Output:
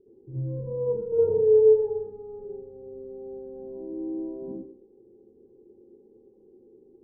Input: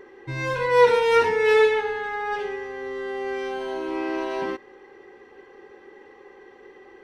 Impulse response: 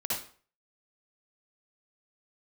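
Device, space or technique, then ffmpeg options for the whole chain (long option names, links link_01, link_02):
next room: -filter_complex "[0:a]asettb=1/sr,asplit=3[link_01][link_02][link_03];[link_01]atrim=end=1.124[link_04];[link_02]atrim=start=1.12:end=2,asetpts=PTS-STARTPTS,afade=type=in:duration=0.004:curve=qsin,afade=type=out:start_time=0.876:duration=0.004:curve=qsin,equalizer=frequency=125:width_type=o:width=1:gain=9,equalizer=frequency=250:width_type=o:width=1:gain=-11,equalizer=frequency=500:width_type=o:width=1:gain=12,equalizer=frequency=1000:width_type=o:width=1:gain=9,equalizer=frequency=2000:width_type=o:width=1:gain=5,equalizer=frequency=4000:width_type=o:width=1:gain=-9[link_05];[link_03]atrim=start=1.996[link_06];[link_04][link_05]acrossfade=duration=0.004:curve1=hsin:curve2=qsin[link_07];[link_07][link_06]acrossfade=duration=0.004:curve1=qsin:curve2=hsin,lowpass=frequency=370:width=0.5412,lowpass=frequency=370:width=1.3066[link_08];[1:a]atrim=start_sample=2205[link_09];[link_08][link_09]afir=irnorm=-1:irlink=0,volume=-7dB"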